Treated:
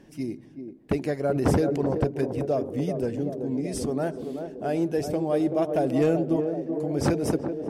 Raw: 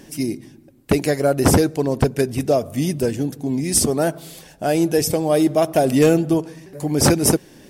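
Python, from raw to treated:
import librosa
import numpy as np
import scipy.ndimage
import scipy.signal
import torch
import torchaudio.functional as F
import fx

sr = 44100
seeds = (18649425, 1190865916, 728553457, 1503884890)

p1 = fx.lowpass(x, sr, hz=1900.0, slope=6)
p2 = p1 + fx.echo_banded(p1, sr, ms=382, feedback_pct=75, hz=400.0, wet_db=-6.0, dry=0)
p3 = fx.sustainer(p2, sr, db_per_s=33.0, at=(1.34, 2.0), fade=0.02)
y = F.gain(torch.from_numpy(p3), -8.0).numpy()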